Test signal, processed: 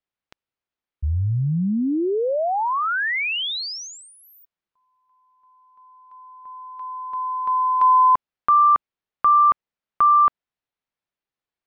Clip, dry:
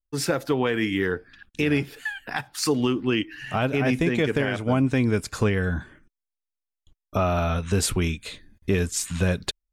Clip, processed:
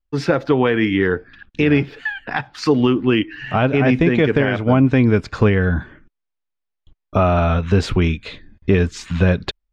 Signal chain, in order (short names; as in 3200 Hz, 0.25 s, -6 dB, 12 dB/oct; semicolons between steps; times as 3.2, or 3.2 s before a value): air absorption 220 m; gain +8 dB